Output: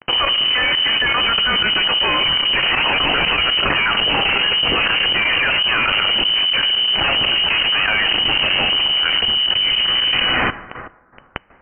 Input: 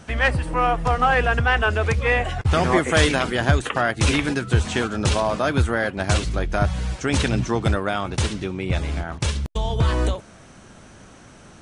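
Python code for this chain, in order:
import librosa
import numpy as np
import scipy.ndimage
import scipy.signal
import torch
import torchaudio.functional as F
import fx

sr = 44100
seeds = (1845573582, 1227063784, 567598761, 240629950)

y = fx.filter_lfo_notch(x, sr, shape='saw_up', hz=7.0, low_hz=580.0, high_hz=1700.0, q=1.1)
y = fx.fuzz(y, sr, gain_db=43.0, gate_db=-36.0)
y = fx.peak_eq(y, sr, hz=270.0, db=-9.5, octaves=1.1)
y = fx.freq_invert(y, sr, carrier_hz=3000)
y = fx.rev_plate(y, sr, seeds[0], rt60_s=1.4, hf_ratio=0.4, predelay_ms=0, drr_db=11.5)
y = fx.step_gate(y, sr, bpm=120, pattern='.x.xxx..x..xx', floor_db=-12.0, edge_ms=4.5)
y = fx.env_flatten(y, sr, amount_pct=100)
y = y * 10.0 ** (-4.5 / 20.0)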